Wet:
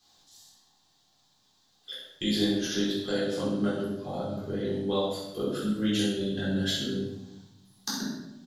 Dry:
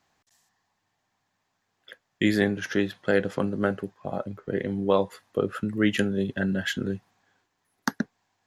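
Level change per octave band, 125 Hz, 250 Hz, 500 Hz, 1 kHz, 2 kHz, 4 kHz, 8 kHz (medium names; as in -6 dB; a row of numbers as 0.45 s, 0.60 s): -2.5 dB, -1.5 dB, -4.0 dB, -5.5 dB, -9.0 dB, +5.5 dB, +5.0 dB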